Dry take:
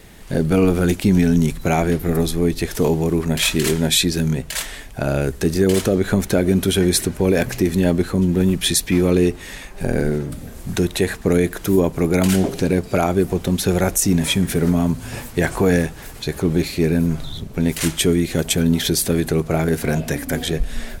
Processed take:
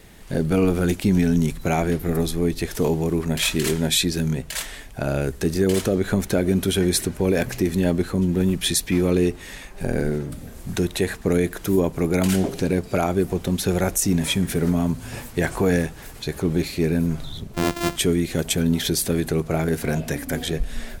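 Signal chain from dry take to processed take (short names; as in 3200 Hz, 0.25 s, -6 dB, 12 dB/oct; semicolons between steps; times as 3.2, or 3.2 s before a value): 17.54–17.96 sample sorter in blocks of 128 samples; gain -3.5 dB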